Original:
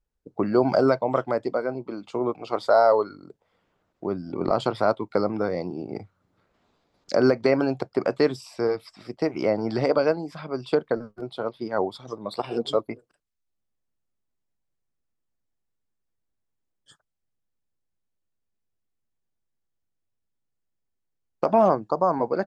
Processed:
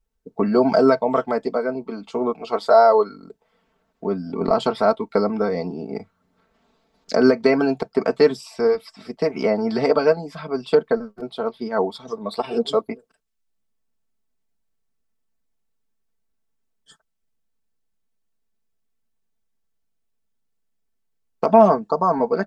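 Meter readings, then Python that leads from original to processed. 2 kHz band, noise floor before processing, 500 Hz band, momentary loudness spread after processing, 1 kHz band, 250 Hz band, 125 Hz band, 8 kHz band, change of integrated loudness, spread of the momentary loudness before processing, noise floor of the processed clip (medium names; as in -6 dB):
+3.5 dB, -79 dBFS, +4.5 dB, 14 LU, +5.0 dB, +4.5 dB, +1.0 dB, no reading, +4.5 dB, 13 LU, -72 dBFS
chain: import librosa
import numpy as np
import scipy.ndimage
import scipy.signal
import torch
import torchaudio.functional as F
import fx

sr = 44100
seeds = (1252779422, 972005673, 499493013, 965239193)

y = x + 0.78 * np.pad(x, (int(4.5 * sr / 1000.0), 0))[:len(x)]
y = y * librosa.db_to_amplitude(2.0)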